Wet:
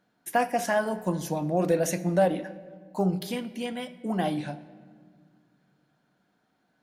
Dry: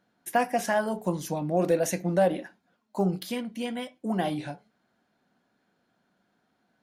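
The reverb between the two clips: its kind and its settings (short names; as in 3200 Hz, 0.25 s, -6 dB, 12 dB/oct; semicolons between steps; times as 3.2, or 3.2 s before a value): shoebox room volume 2400 m³, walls mixed, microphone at 0.47 m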